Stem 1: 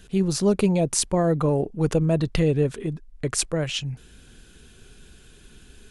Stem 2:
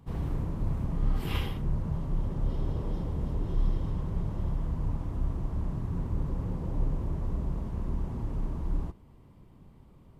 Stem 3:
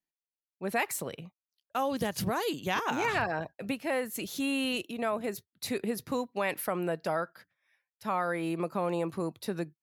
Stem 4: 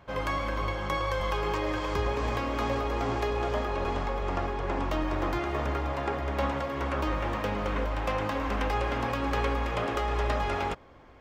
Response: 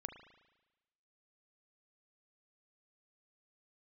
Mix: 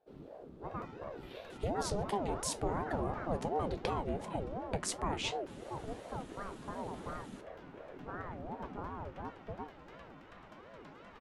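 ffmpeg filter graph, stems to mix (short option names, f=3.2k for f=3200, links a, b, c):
-filter_complex "[0:a]acompressor=threshold=-28dB:ratio=6,adelay=1500,volume=2.5dB[a];[1:a]equalizer=f=3.7k:w=1.5:g=7.5,volume=-13dB[b];[2:a]lowpass=f=1.1k:w=0.5412,lowpass=f=1.1k:w=1.3066,volume=-4.5dB[c];[3:a]adelay=550,volume=-17.5dB[d];[a][b][c][d]amix=inputs=4:normalize=0,highshelf=f=11k:g=-6,flanger=delay=9:depth=4.7:regen=63:speed=1.8:shape=triangular,aeval=exprs='val(0)*sin(2*PI*410*n/s+410*0.5/2.8*sin(2*PI*2.8*n/s))':c=same"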